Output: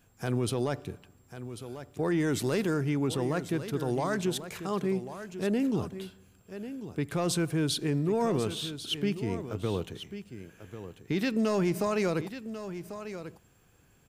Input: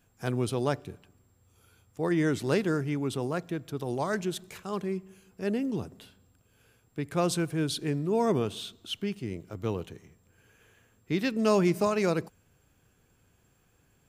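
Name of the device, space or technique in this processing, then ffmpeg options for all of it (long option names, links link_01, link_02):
soft clipper into limiter: -filter_complex "[0:a]asoftclip=type=tanh:threshold=-14.5dB,alimiter=limit=-23dB:level=0:latency=1,asettb=1/sr,asplit=3[link_01][link_02][link_03];[link_01]atrim=end=2.204[link_04];[link_02]atrim=start=2.2:end=2.74,asetpts=PTS-STARTPTS,afade=type=in:duration=0.004:curve=qsin,afade=type=out:start_time=0.536:duration=0.004:curve=qsin,highshelf=frequency=7800:gain=8[link_05];[link_03]atrim=start=2.736[link_06];[link_04][link_05]acrossfade=duration=0.004:curve1=hsin:curve2=qsin[link_07];[link_07][link_06]acrossfade=duration=0.004:curve1=qsin:curve2=hsin,aecho=1:1:1093:0.266,volume=3dB"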